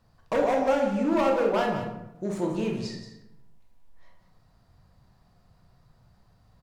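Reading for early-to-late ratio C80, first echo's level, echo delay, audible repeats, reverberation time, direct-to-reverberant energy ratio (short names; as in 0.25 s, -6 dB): 6.0 dB, -10.5 dB, 0.178 s, 1, 0.85 s, 0.0 dB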